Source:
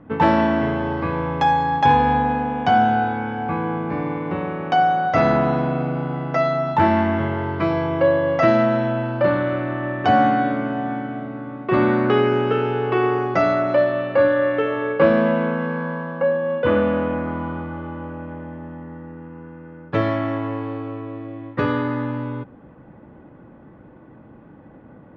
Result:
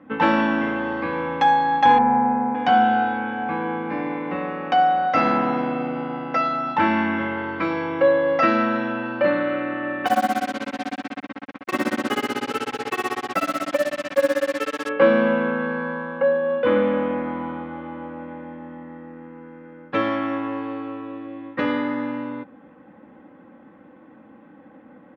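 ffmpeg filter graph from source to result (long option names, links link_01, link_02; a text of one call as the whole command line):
ffmpeg -i in.wav -filter_complex "[0:a]asettb=1/sr,asplit=3[link_01][link_02][link_03];[link_01]atrim=end=1.984[link_04];[link_02]atrim=start=1.98:end=2.55,asetpts=PTS-STARTPTS,afade=type=in:duration=0.004:curve=qsin,afade=type=out:start_time=0.566:duration=0.004:curve=qsin,lowpass=1200,aemphasis=mode=reproduction:type=50fm,aecho=1:1:5.2:0.9,atrim=end_sample=25137[link_05];[link_03]atrim=start=2.546[link_06];[link_04][link_05]acrossfade=duration=0.004:curve1=hsin:curve2=qsin[link_07];[link_07][link_06]acrossfade=duration=0.004:curve1=qsin:curve2=hsin,asettb=1/sr,asplit=3[link_08][link_09][link_10];[link_08]atrim=end=10.064[link_11];[link_09]atrim=start=10.06:end=14.89,asetpts=PTS-STARTPTS,afade=type=in:duration=0.004:curve=qsin,afade=type=out:start_time=4.826:duration=0.004:curve=qsin,tremolo=f=16:d=0.95,acrusher=bits=4:mix=0:aa=0.5[link_12];[link_10]atrim=start=14.886[link_13];[link_11][link_12]acrossfade=duration=0.004:curve1=hsin:curve2=qsin[link_14];[link_14][link_13]acrossfade=duration=0.004:curve1=qsin:curve2=hsin,highpass=150,equalizer=frequency=2200:width_type=o:width=1.6:gain=6.5,aecho=1:1:3.8:0.63,volume=-4dB" out.wav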